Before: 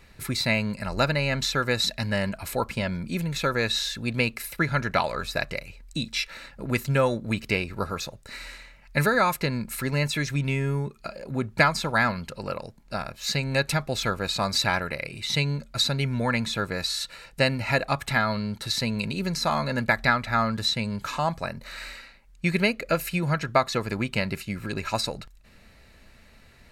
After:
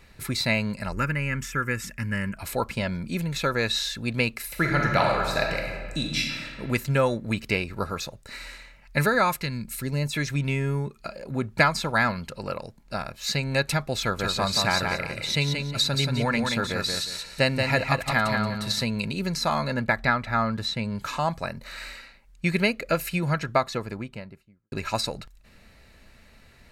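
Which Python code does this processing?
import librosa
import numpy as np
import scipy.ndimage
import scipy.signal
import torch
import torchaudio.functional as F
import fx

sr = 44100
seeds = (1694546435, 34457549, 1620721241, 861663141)

y = fx.fixed_phaser(x, sr, hz=1700.0, stages=4, at=(0.92, 2.37))
y = fx.reverb_throw(y, sr, start_s=4.45, length_s=2.1, rt60_s=1.6, drr_db=0.0)
y = fx.peak_eq(y, sr, hz=fx.line((9.4, 480.0), (10.12, 2100.0)), db=-10.0, octaves=2.5, at=(9.4, 10.12), fade=0.02)
y = fx.echo_feedback(y, sr, ms=179, feedback_pct=27, wet_db=-4.5, at=(14.01, 18.84))
y = fx.high_shelf(y, sr, hz=3500.0, db=-8.0, at=(19.74, 20.96))
y = fx.studio_fade_out(y, sr, start_s=23.3, length_s=1.42)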